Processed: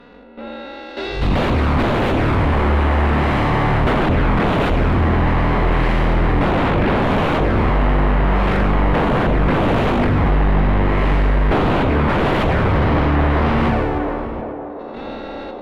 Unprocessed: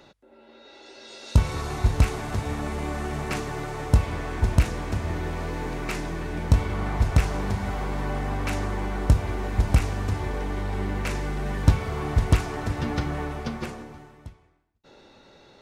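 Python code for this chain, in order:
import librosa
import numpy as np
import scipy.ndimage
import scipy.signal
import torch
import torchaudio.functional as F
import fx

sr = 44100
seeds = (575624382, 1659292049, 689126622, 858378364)

p1 = fx.spec_blur(x, sr, span_ms=230.0)
p2 = fx.high_shelf(p1, sr, hz=3000.0, db=7.5)
p3 = fx.level_steps(p2, sr, step_db=9)
p4 = fx.leveller(p3, sr, passes=1)
p5 = fx.env_flanger(p4, sr, rest_ms=4.3, full_db=-23.5)
p6 = fx.fold_sine(p5, sr, drive_db=16, ceiling_db=-18.0)
p7 = fx.air_absorb(p6, sr, metres=500.0)
p8 = p7 + fx.echo_banded(p7, sr, ms=699, feedback_pct=76, hz=500.0, wet_db=-9.5, dry=0)
p9 = fx.sustainer(p8, sr, db_per_s=20.0)
y = p9 * 10.0 ** (6.5 / 20.0)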